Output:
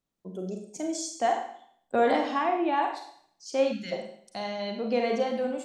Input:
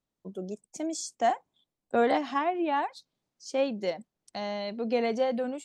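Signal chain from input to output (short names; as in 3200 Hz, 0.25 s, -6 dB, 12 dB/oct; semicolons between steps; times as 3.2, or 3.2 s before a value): Schroeder reverb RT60 0.62 s, combs from 33 ms, DRR 3 dB; spectral gain 3.72–3.92, 320–1300 Hz -20 dB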